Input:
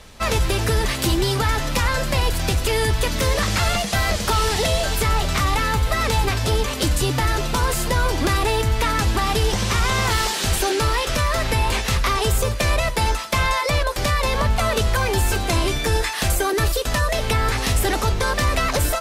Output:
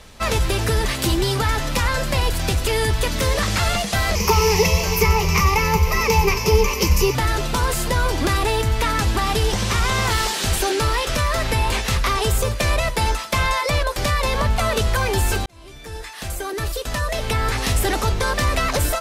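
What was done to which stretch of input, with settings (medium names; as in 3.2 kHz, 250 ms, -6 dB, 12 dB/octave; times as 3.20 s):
4.15–7.15 s: rippled EQ curve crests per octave 0.8, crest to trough 16 dB
15.46–17.68 s: fade in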